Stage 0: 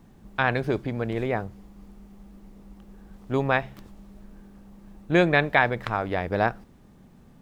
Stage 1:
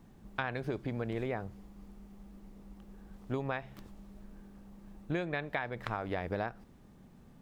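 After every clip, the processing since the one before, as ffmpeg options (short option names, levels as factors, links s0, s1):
-af "acompressor=threshold=0.0501:ratio=12,volume=0.596"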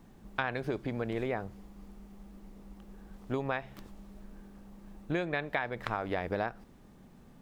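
-af "equalizer=f=100:t=o:w=1.9:g=-4,volume=1.41"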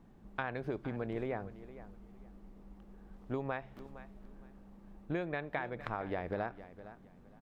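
-af "highshelf=f=3100:g=-11,aecho=1:1:462|924:0.178|0.0391,volume=0.668"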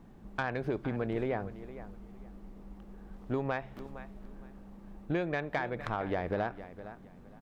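-af "asoftclip=type=tanh:threshold=0.0501,volume=1.88"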